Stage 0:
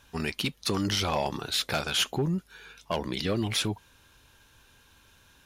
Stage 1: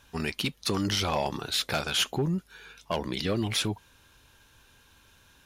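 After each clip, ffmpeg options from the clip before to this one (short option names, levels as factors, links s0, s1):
-af anull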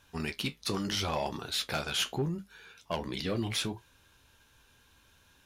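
-af "flanger=delay=9.7:depth=7.1:regen=-55:speed=0.73:shape=triangular"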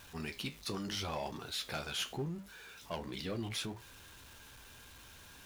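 -af "aeval=exprs='val(0)+0.5*0.00708*sgn(val(0))':c=same,volume=0.422"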